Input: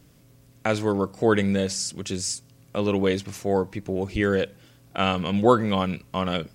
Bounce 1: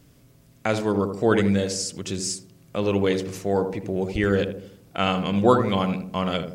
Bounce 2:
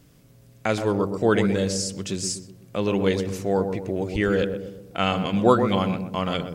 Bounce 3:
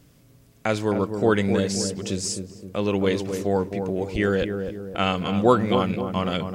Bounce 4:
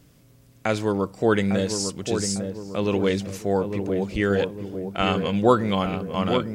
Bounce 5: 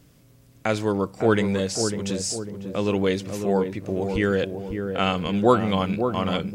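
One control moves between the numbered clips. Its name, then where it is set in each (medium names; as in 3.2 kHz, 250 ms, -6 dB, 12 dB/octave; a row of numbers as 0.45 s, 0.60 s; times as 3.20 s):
filtered feedback delay, time: 80 ms, 124 ms, 262 ms, 852 ms, 549 ms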